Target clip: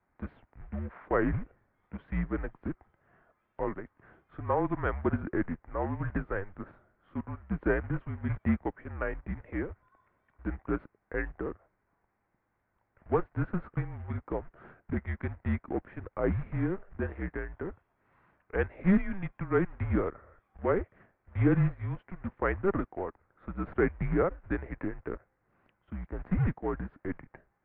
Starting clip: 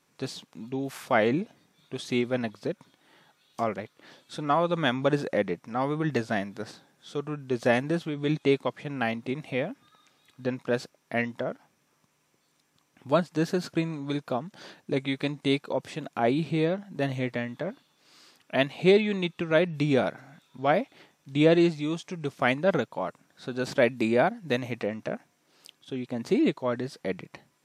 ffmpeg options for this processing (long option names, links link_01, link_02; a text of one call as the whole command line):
ffmpeg -i in.wav -af "bandreject=frequency=50.66:width_type=h:width=4,bandreject=frequency=101.32:width_type=h:width=4,acrusher=bits=3:mode=log:mix=0:aa=0.000001,highpass=frequency=190:width_type=q:width=0.5412,highpass=frequency=190:width_type=q:width=1.307,lowpass=frequency=2100:width_type=q:width=0.5176,lowpass=frequency=2100:width_type=q:width=0.7071,lowpass=frequency=2100:width_type=q:width=1.932,afreqshift=-190,volume=-4dB" out.wav